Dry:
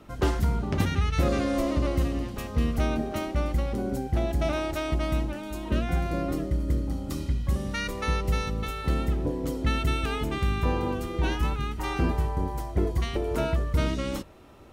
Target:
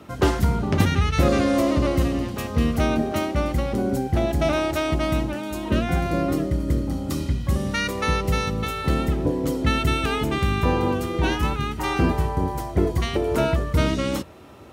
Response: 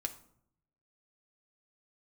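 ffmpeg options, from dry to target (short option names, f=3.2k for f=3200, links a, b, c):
-af "highpass=f=67:w=0.5412,highpass=f=67:w=1.3066,volume=6.5dB"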